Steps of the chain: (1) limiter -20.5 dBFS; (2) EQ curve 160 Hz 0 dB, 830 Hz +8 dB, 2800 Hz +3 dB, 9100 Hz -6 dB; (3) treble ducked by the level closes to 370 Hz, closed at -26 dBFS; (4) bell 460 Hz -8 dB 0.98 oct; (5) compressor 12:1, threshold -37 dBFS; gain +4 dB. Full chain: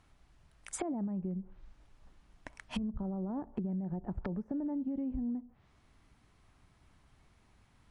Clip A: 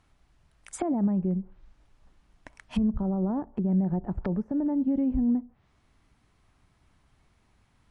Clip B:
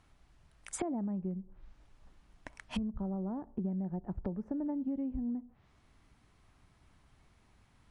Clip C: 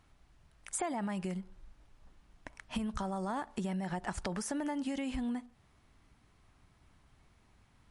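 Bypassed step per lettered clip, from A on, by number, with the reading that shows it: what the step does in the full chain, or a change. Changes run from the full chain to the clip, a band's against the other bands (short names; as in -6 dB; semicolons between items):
5, mean gain reduction 6.5 dB; 1, mean gain reduction 2.5 dB; 3, 125 Hz band -7.0 dB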